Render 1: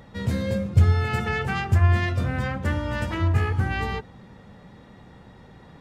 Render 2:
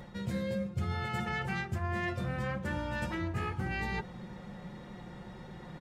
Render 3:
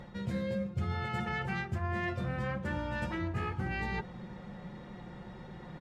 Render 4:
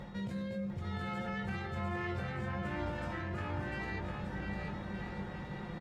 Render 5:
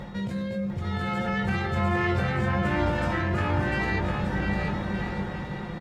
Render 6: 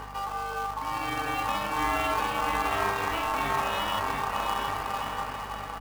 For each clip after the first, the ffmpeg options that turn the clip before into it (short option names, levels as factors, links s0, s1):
-af "aecho=1:1:5.6:0.58,areverse,acompressor=threshold=0.0224:ratio=4,areverse"
-af "highshelf=f=7100:g=-11"
-filter_complex "[0:a]alimiter=level_in=3.35:limit=0.0631:level=0:latency=1:release=38,volume=0.299,asplit=2[s0][s1];[s1]adelay=20,volume=0.473[s2];[s0][s2]amix=inputs=2:normalize=0,asplit=2[s3][s4];[s4]aecho=0:1:700|1225|1619|1914|2136:0.631|0.398|0.251|0.158|0.1[s5];[s3][s5]amix=inputs=2:normalize=0,volume=1.12"
-af "dynaudnorm=f=500:g=5:m=1.68,volume=2.51"
-af "acrusher=bits=3:mode=log:mix=0:aa=0.000001,aeval=exprs='val(0)*sin(2*PI*990*n/s)':c=same,aeval=exprs='val(0)+0.00562*(sin(2*PI*50*n/s)+sin(2*PI*2*50*n/s)/2+sin(2*PI*3*50*n/s)/3+sin(2*PI*4*50*n/s)/4+sin(2*PI*5*50*n/s)/5)':c=same"